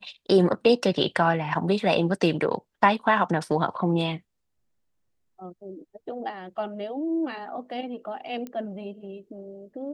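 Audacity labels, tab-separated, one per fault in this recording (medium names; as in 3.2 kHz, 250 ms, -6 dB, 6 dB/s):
8.470000	8.470000	pop -23 dBFS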